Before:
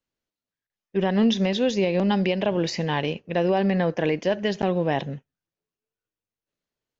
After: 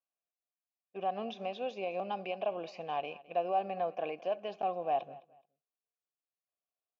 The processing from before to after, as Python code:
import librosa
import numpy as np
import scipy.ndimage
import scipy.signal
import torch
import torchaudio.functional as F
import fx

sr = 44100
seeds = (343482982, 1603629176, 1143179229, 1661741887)

y = fx.vowel_filter(x, sr, vowel='a')
y = fx.echo_feedback(y, sr, ms=212, feedback_pct=23, wet_db=-20.0)